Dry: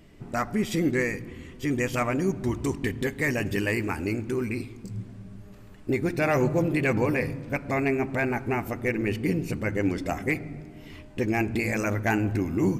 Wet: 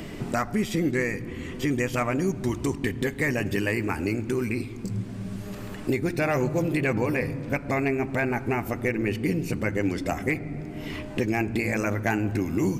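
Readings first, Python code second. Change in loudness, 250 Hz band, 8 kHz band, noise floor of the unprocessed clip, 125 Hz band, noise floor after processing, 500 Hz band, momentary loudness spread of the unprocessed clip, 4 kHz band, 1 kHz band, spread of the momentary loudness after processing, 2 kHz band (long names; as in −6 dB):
0.0 dB, +0.5 dB, +1.0 dB, −46 dBFS, +0.5 dB, −37 dBFS, 0.0 dB, 14 LU, +1.5 dB, 0.0 dB, 8 LU, +0.5 dB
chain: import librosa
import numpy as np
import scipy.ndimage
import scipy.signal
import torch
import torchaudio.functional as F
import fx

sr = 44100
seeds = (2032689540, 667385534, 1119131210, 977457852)

y = fx.band_squash(x, sr, depth_pct=70)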